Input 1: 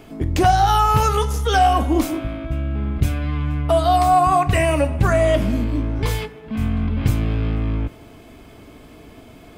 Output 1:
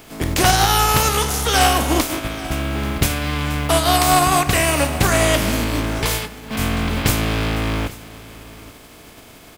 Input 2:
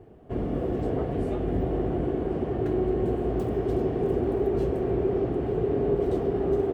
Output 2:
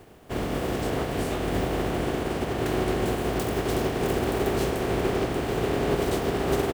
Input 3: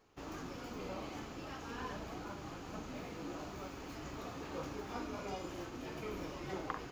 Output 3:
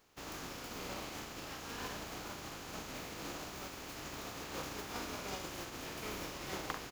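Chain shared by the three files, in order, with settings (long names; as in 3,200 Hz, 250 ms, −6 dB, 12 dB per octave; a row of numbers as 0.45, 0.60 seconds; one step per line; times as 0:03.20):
compressing power law on the bin magnitudes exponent 0.55
single-tap delay 836 ms −19.5 dB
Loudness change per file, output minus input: +1.0, 0.0, +1.5 LU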